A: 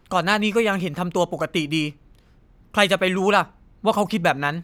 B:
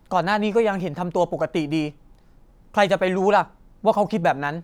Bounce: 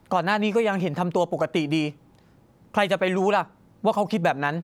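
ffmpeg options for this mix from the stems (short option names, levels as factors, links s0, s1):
-filter_complex "[0:a]bandreject=f=1400:w=12,volume=0.266[s0];[1:a]highpass=f=59:w=0.5412,highpass=f=59:w=1.3066,acompressor=threshold=0.0708:ratio=6,adelay=0.4,volume=1.19[s1];[s0][s1]amix=inputs=2:normalize=0"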